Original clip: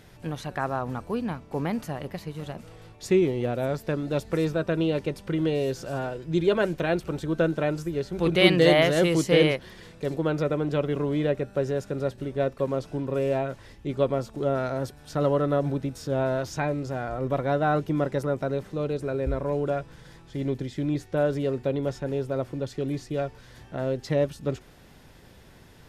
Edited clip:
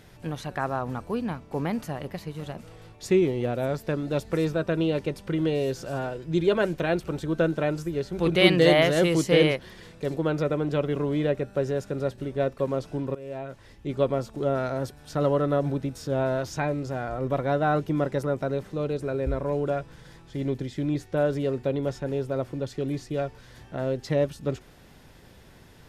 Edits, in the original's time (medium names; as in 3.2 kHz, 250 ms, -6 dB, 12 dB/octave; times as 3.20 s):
13.15–13.95 s: fade in, from -19 dB